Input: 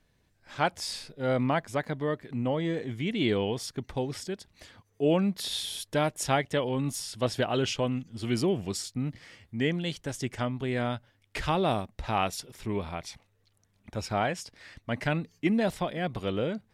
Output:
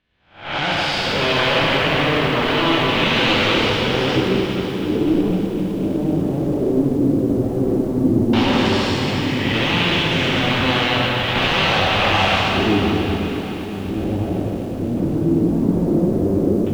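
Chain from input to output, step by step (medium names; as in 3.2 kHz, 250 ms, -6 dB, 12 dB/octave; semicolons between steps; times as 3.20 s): spectral blur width 330 ms; dynamic bell 130 Hz, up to -4 dB, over -46 dBFS, Q 0.97; level rider gain up to 17 dB; wavefolder -18 dBFS; Chebyshev shaper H 3 -25 dB, 4 -12 dB, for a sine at -18 dBFS; LFO low-pass square 0.12 Hz 330–3100 Hz; tape echo 451 ms, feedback 87%, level -18.5 dB, low-pass 1.4 kHz; plate-style reverb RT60 3.6 s, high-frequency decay 0.85×, DRR -3 dB; bit-crushed delay 252 ms, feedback 80%, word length 6-bit, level -15 dB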